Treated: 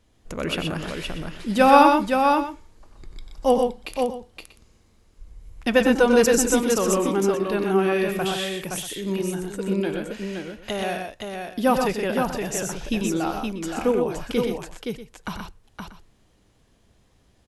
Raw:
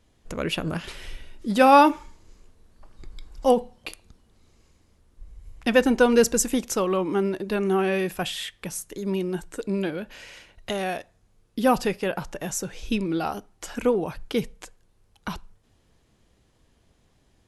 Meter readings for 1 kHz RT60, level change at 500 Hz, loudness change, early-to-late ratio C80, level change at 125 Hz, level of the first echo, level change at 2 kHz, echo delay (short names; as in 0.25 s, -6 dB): none, +2.5 dB, +1.5 dB, none, +2.0 dB, -9.5 dB, +2.5 dB, 92 ms